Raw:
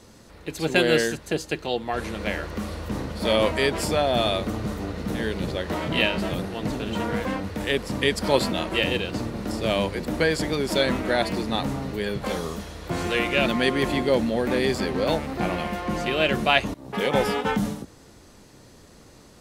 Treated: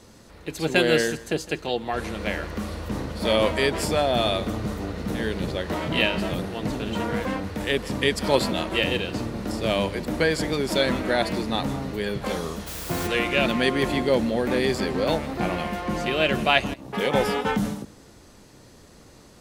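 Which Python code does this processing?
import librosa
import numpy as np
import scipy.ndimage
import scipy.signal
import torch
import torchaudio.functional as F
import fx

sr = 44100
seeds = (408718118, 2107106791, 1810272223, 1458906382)

y = x + 10.0 ** (-19.5 / 20.0) * np.pad(x, (int(160 * sr / 1000.0), 0))[:len(x)]
y = fx.quant_dither(y, sr, seeds[0], bits=6, dither='triangular', at=(12.66, 13.06), fade=0.02)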